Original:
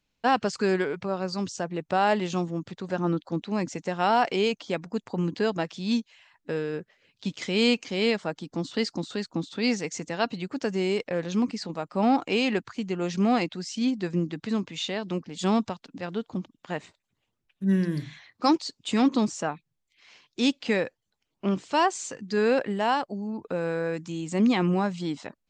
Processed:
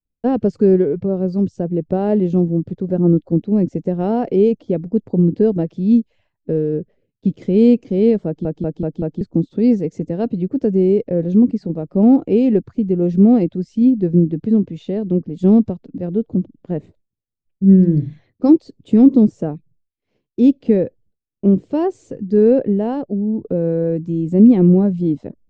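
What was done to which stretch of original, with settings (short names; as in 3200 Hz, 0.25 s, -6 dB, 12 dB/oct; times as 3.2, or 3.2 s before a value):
8.26 stutter in place 0.19 s, 5 plays
whole clip: tilt -3.5 dB/oct; expander -49 dBFS; resonant low shelf 690 Hz +12.5 dB, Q 1.5; gain -8 dB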